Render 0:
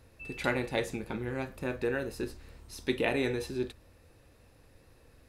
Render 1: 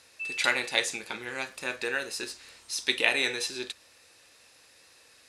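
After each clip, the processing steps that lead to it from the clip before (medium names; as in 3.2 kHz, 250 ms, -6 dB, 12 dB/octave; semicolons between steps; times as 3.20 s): frequency weighting ITU-R 468; trim +3 dB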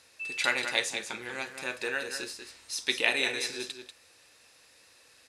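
delay 190 ms -8.5 dB; trim -2 dB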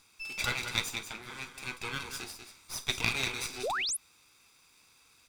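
comb filter that takes the minimum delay 0.83 ms; painted sound rise, 3.63–3.97 s, 370–12000 Hz -30 dBFS; trim -2 dB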